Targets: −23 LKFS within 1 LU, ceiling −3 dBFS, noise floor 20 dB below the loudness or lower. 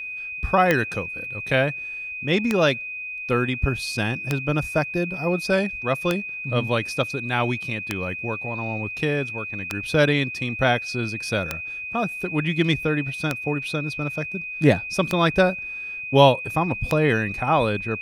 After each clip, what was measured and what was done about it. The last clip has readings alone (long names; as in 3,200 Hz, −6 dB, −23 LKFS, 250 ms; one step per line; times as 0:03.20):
number of clicks 10; interfering tone 2,500 Hz; level of the tone −30 dBFS; integrated loudness −23.5 LKFS; sample peak −2.5 dBFS; target loudness −23.0 LKFS
→ click removal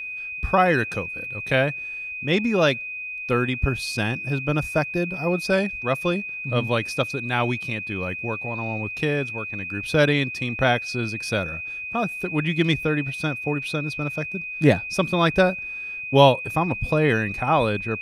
number of clicks 0; interfering tone 2,500 Hz; level of the tone −30 dBFS
→ notch filter 2,500 Hz, Q 30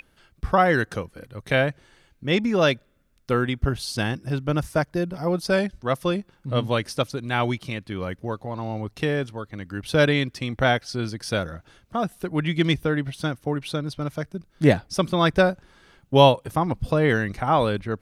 interfering tone none found; integrated loudness −24.0 LKFS; sample peak −3.0 dBFS; target loudness −23.0 LKFS
→ level +1 dB
brickwall limiter −3 dBFS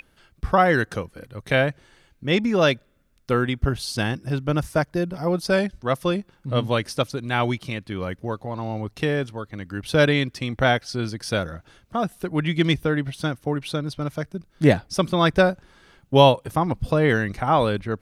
integrated loudness −23.0 LKFS; sample peak −3.0 dBFS; background noise floor −61 dBFS